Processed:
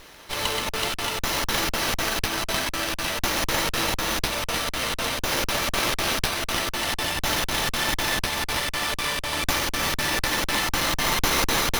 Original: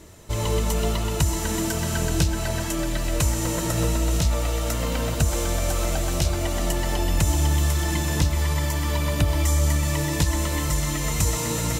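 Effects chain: 5.7–6.16 companded quantiser 4-bit; weighting filter ITU-R 468; echo with dull and thin repeats by turns 0.171 s, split 2400 Hz, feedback 77%, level -7 dB; crackling interface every 0.25 s, samples 2048, zero, from 0.69; running maximum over 5 samples

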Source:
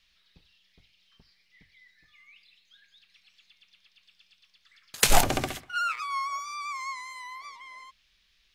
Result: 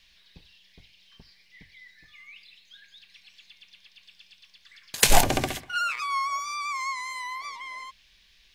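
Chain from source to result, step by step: notch 1300 Hz, Q 6.4; in parallel at +0.5 dB: compressor, threshold -40 dBFS, peak gain reduction 25.5 dB; on the sum: gain +1.5 dB

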